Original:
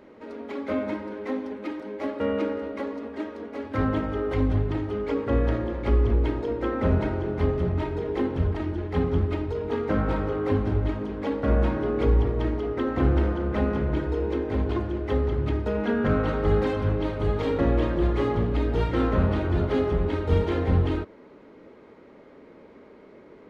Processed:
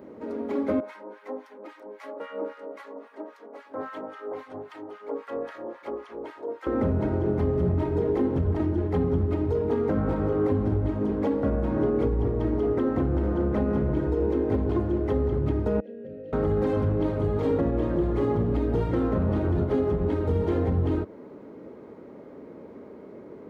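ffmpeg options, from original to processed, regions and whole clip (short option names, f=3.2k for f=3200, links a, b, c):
-filter_complex "[0:a]asettb=1/sr,asplit=3[a][b][c];[a]atrim=end=0.804[d];[b]atrim=start=0.8:end=6.67,asetpts=PTS-STARTPTS,afade=t=in:d=0.004:c=qsin,afade=t=out:st=5.866:d=0.004:c=qsin,highpass=670,acrossover=split=1100[e][f];[e]aeval=exprs='val(0)*(1-1/2+1/2*cos(2*PI*3.7*n/s))':c=same[g];[f]aeval=exprs='val(0)*(1-1/2-1/2*cos(2*PI*3.7*n/s))':c=same[h];[g][h]amix=inputs=2:normalize=0[i];[c]atrim=start=6.666[j];[d][i]acrossfade=d=0.004:c1=hsin:c2=qsin[k];[k][j]acrossfade=d=0.004:c1=qsin:c2=hsin,asettb=1/sr,asplit=3[l][m][n];[l]atrim=end=15.804[o];[m]atrim=start=15.8:end=16.33,asetpts=PTS-STARTPTS,afade=t=in:d=0.004:c=qsin,afade=t=out:st=0.526:d=0.004:c=qsin,asplit=3[p][q][r];[p]bandpass=f=530:t=q:w=8,volume=0dB[s];[q]bandpass=f=1.84k:t=q:w=8,volume=-6dB[t];[r]bandpass=f=2.48k:t=q:w=8,volume=-9dB[u];[s][t][u]amix=inputs=3:normalize=0,equalizer=f=1.4k:w=0.76:g=-8.5,acrossover=split=290|3000[v][w][x];[w]acompressor=threshold=-48dB:ratio=5:attack=3.2:release=140:knee=2.83:detection=peak[y];[v][y][x]amix=inputs=3:normalize=0[z];[n]atrim=start=16.326[aa];[o][z]acrossfade=d=0.004:c1=hsin:c2=qsin[ab];[ab][aa]acrossfade=d=0.004:c1=qsin:c2=hsin,alimiter=limit=-21dB:level=0:latency=1:release=179,highpass=77,equalizer=f=3.1k:t=o:w=2.8:g=-12.5,volume=7dB"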